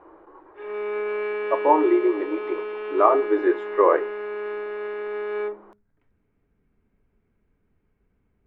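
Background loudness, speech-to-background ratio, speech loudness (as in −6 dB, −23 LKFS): −30.0 LKFS, 8.0 dB, −22.0 LKFS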